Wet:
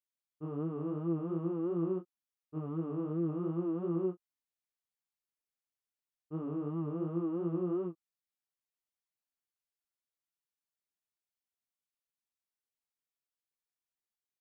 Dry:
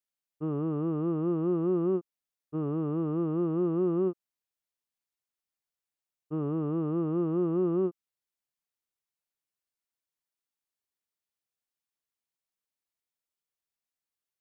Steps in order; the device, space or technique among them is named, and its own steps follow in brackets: double-tracked vocal (doubler 18 ms -9 dB; chorus 2.8 Hz, delay 17 ms, depth 5.2 ms); gain -4 dB

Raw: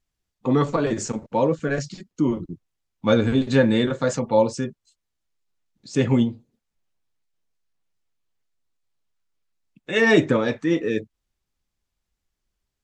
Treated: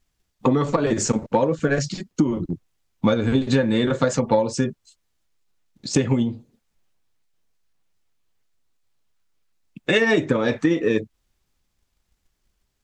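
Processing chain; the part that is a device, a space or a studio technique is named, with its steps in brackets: drum-bus smash (transient shaper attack +7 dB, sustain +2 dB; compressor 10:1, threshold -21 dBFS, peak gain reduction 13 dB; soft clip -11.5 dBFS, distortion -25 dB); gain +6.5 dB

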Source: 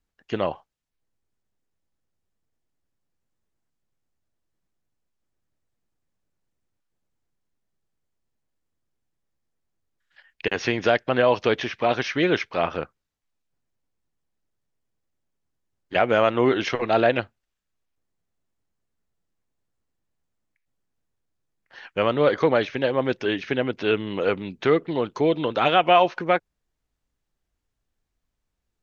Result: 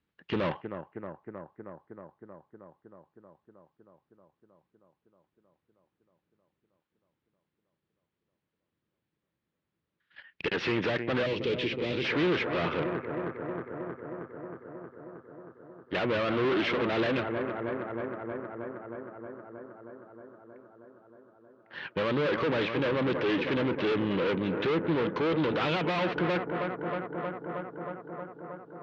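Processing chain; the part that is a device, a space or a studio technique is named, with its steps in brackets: analogue delay pedal into a guitar amplifier (analogue delay 0.315 s, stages 4096, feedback 79%, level -16.5 dB; tube stage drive 32 dB, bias 0.65; speaker cabinet 94–3800 Hz, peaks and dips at 170 Hz +5 dB, 340 Hz +3 dB, 720 Hz -7 dB); 11.26–12.05 band shelf 1100 Hz -11.5 dB; gain +6.5 dB

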